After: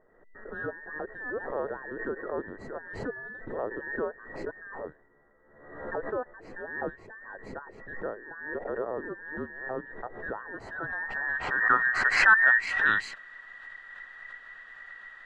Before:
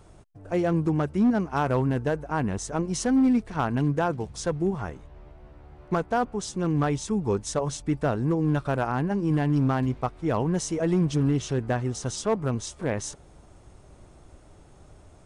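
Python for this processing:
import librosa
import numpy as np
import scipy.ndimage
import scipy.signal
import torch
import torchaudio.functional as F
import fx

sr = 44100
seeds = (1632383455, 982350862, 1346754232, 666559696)

y = fx.band_invert(x, sr, width_hz=2000)
y = fx.filter_sweep_lowpass(y, sr, from_hz=450.0, to_hz=3000.0, start_s=10.23, end_s=13.03, q=2.1)
y = fx.pre_swell(y, sr, db_per_s=62.0)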